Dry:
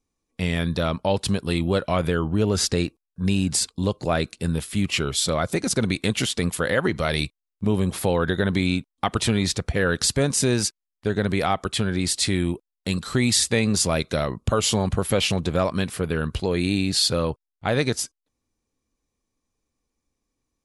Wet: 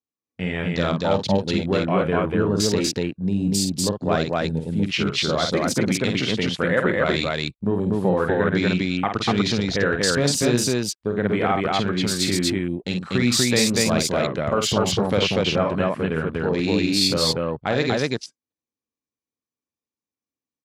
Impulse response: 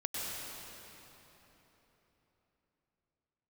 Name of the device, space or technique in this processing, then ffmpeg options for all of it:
over-cleaned archive recording: -filter_complex "[0:a]highpass=130,lowpass=7800,afwtdn=0.02,asettb=1/sr,asplit=3[link_01][link_02][link_03];[link_01]atrim=end=9.664[link_04];[link_02]atrim=start=9.66:end=10.22,asetpts=PTS-STARTPTS,afade=type=in:duration=0.004:curve=qsin,afade=type=out:start_time=0.556:duration=0.004:curve=qsin,lowpass=10000[link_05];[link_03]atrim=start=10.216[link_06];[link_04][link_05]acrossfade=duration=0.004:curve1=hsin:curve2=qsin[link_07];[link_07][link_06]acrossfade=duration=0.004:curve1=qsin:curve2=hsin,aecho=1:1:49.56|242:0.501|0.891"

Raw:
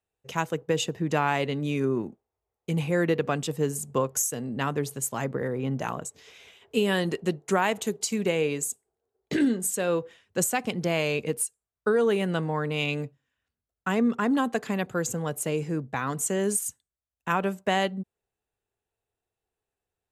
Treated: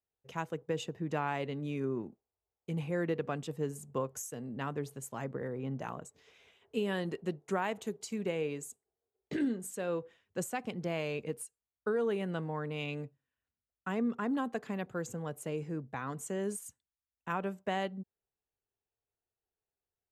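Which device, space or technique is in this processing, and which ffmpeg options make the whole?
behind a face mask: -af "highshelf=frequency=3100:gain=-8,volume=-8.5dB"

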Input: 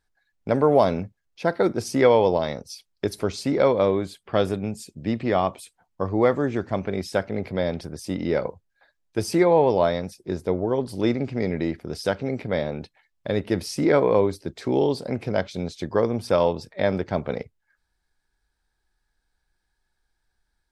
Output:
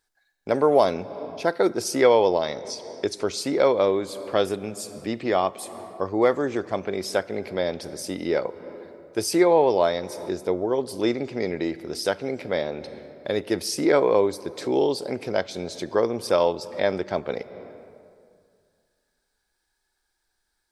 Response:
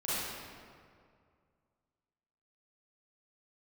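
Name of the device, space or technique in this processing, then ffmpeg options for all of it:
ducked reverb: -filter_complex "[0:a]bass=frequency=250:gain=-10,treble=frequency=4000:gain=6,asplit=3[link_01][link_02][link_03];[1:a]atrim=start_sample=2205[link_04];[link_02][link_04]afir=irnorm=-1:irlink=0[link_05];[link_03]apad=whole_len=913600[link_06];[link_05][link_06]sidechaincompress=threshold=-35dB:ratio=10:attack=8:release=240,volume=-14.5dB[link_07];[link_01][link_07]amix=inputs=2:normalize=0,asettb=1/sr,asplit=3[link_08][link_09][link_10];[link_08]atrim=end=2.214[link_11];[link_09]atrim=start=2.21:end=3.27,asetpts=PTS-STARTPTS,afade=type=in:duration=0.004:curve=qsin,afade=type=out:start_time=1.056:duration=0.004:curve=qsin,lowpass=frequency=8200:width=0.5412,lowpass=frequency=8200:width=1.3066[link_12];[link_10]atrim=start=3.266[link_13];[link_11][link_12]acrossfade=duration=0.004:curve1=hsin:curve2=qsin[link_14];[link_14][link_13]acrossfade=duration=0.004:curve1=qsin:curve2=hsin,equalizer=frequency=360:width_type=o:width=0.41:gain=3"

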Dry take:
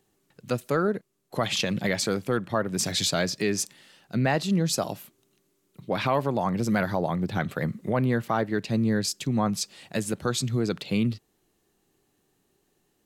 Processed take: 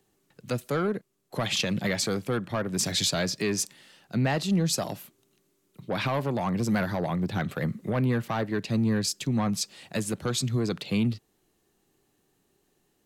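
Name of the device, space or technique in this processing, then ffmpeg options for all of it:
one-band saturation: -filter_complex "[0:a]acrossover=split=220|2200[link_01][link_02][link_03];[link_02]asoftclip=type=tanh:threshold=-23.5dB[link_04];[link_01][link_04][link_03]amix=inputs=3:normalize=0"

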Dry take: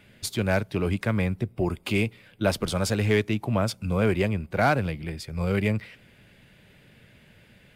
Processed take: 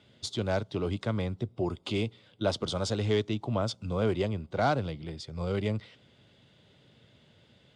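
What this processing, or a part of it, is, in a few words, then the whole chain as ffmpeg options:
car door speaker: -af "highpass=85,equalizer=frequency=190:width_type=q:width=4:gain=-5,equalizer=frequency=1700:width_type=q:width=4:gain=-9,equalizer=frequency=2400:width_type=q:width=4:gain=-10,equalizer=frequency=3500:width_type=q:width=4:gain=6,lowpass=frequency=7300:width=0.5412,lowpass=frequency=7300:width=1.3066,volume=-3.5dB"

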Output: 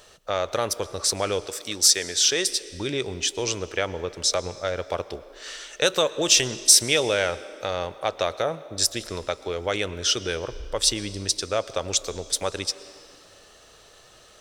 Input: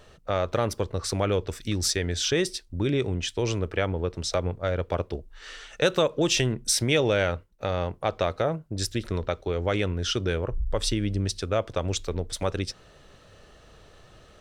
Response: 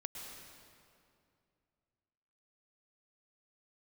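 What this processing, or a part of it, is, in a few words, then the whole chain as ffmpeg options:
filtered reverb send: -filter_complex "[0:a]asplit=2[link_01][link_02];[link_02]highpass=frequency=260:width=0.5412,highpass=frequency=260:width=1.3066,lowpass=8400[link_03];[1:a]atrim=start_sample=2205[link_04];[link_03][link_04]afir=irnorm=-1:irlink=0,volume=-10dB[link_05];[link_01][link_05]amix=inputs=2:normalize=0,asettb=1/sr,asplit=3[link_06][link_07][link_08];[link_06]atrim=end=1.464[link_09];[link_07]atrim=start=1.46:end=2.47,asetpts=PTS-STARTPTS,afade=type=in:duration=0.004:curve=qsin,afade=type=out:start_time=1.006:duration=0.004:curve=qsin,highpass=frequency=250:poles=1[link_10];[link_08]atrim=start=2.466[link_11];[link_09][link_10]acrossfade=duration=0.004:curve1=hsin:curve2=qsin[link_12];[link_12][link_11]acrossfade=duration=0.004:curve1=qsin:curve2=hsin,bass=frequency=250:gain=-9,treble=frequency=4000:gain=11"

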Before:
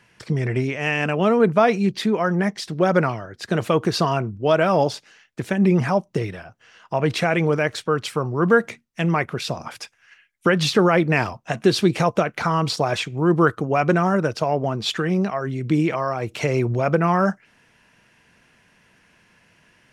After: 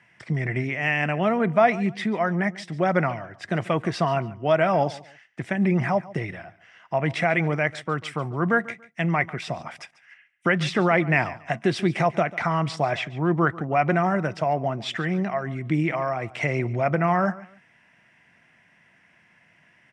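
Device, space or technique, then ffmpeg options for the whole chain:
car door speaker: -filter_complex "[0:a]asettb=1/sr,asplit=3[link_01][link_02][link_03];[link_01]atrim=end=12.894[link_04];[link_02]atrim=start=12.89:end=13.92,asetpts=PTS-STARTPTS,afade=type=in:duration=0.004:curve=qsin,afade=type=out:start_time=1.026:duration=0.004:curve=qsin,lowpass=6200[link_05];[link_03]atrim=start=13.916[link_06];[link_04][link_05]acrossfade=duration=0.004:curve1=hsin:curve2=qsin[link_07];[link_07][link_06]acrossfade=duration=0.004:curve1=qsin:curve2=hsin,highpass=84,equalizer=frequency=150:width_type=q:width=4:gain=3,equalizer=frequency=450:width_type=q:width=4:gain=-6,equalizer=frequency=700:width_type=q:width=4:gain=6,equalizer=frequency=2000:width_type=q:width=4:gain=10,equalizer=frequency=4300:width_type=q:width=4:gain=-9,equalizer=frequency=6600:width_type=q:width=4:gain=-7,lowpass=frequency=8500:width=0.5412,lowpass=frequency=8500:width=1.3066,aecho=1:1:142|284:0.112|0.0281,volume=-4.5dB"

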